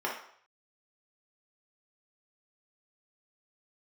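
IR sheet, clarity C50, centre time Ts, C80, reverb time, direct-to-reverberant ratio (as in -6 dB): 4.5 dB, 34 ms, 9.5 dB, 0.60 s, -4.0 dB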